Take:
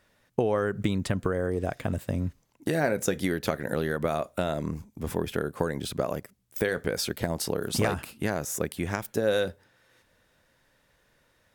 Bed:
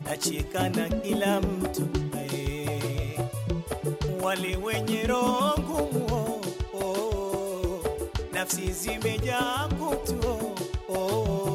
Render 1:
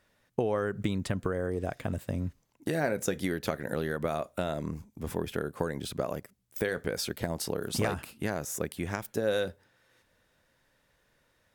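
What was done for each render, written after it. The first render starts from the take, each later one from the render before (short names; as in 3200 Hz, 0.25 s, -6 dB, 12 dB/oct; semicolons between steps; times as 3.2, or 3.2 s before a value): gain -3.5 dB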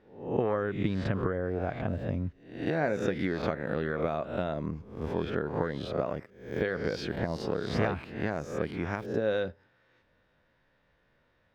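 spectral swells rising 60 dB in 0.55 s; air absorption 240 m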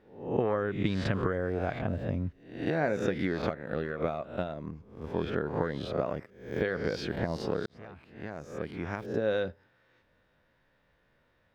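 0.85–1.79 high shelf 2100 Hz +7.5 dB; 3.49–5.14 gate -32 dBFS, range -6 dB; 7.66–9.31 fade in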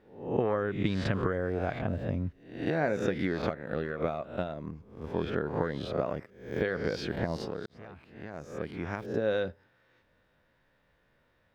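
7.44–8.34 compressor 1.5:1, threshold -41 dBFS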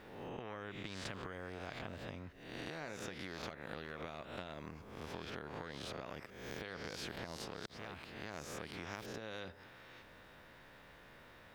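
compressor, threshold -38 dBFS, peak gain reduction 15 dB; spectral compressor 2:1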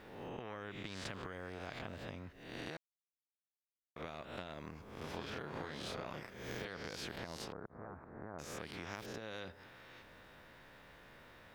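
2.77–3.96 mute; 4.98–6.68 doubler 33 ms -3 dB; 7.52–8.39 inverse Chebyshev low-pass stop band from 2800 Hz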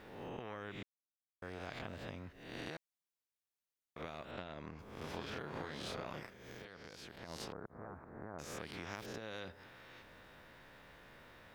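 0.83–1.42 mute; 4.31–4.79 air absorption 91 m; 6.25–7.33 dip -8 dB, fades 0.13 s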